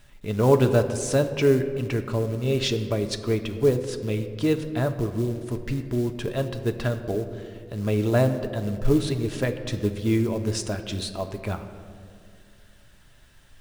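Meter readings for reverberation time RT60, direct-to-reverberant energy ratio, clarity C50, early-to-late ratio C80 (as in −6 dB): 2.3 s, 6.0 dB, 10.5 dB, 11.5 dB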